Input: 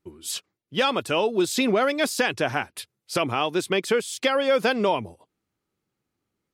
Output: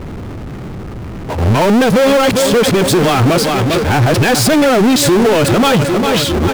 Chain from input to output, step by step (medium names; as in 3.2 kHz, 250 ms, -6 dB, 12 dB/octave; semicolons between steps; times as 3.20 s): reverse the whole clip; RIAA curve playback; on a send: feedback delay 401 ms, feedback 51%, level -17 dB; on the sum: level-controlled noise filter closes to 2 kHz, open at -19.5 dBFS; treble shelf 7.9 kHz +9 dB; power-law waveshaper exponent 0.35; loudness maximiser +10 dB; trim -5.5 dB